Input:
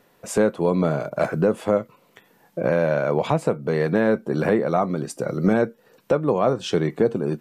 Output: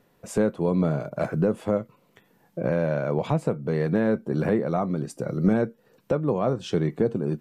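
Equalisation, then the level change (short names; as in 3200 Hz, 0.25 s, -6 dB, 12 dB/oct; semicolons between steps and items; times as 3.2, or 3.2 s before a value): low shelf 270 Hz +9.5 dB; -7.0 dB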